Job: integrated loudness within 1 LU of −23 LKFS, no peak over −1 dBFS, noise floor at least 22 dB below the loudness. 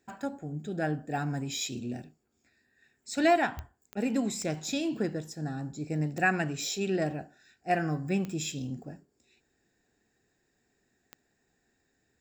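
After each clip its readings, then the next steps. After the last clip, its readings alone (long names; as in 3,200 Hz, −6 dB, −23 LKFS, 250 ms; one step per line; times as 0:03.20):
number of clicks 6; integrated loudness −31.5 LKFS; sample peak −13.5 dBFS; target loudness −23.0 LKFS
→ click removal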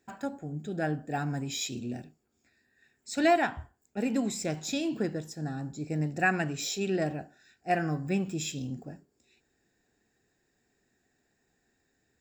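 number of clicks 0; integrated loudness −31.5 LKFS; sample peak −13.5 dBFS; target loudness −23.0 LKFS
→ level +8.5 dB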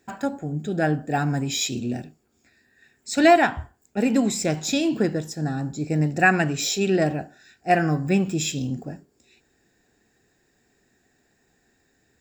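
integrated loudness −23.0 LKFS; sample peak −5.0 dBFS; background noise floor −67 dBFS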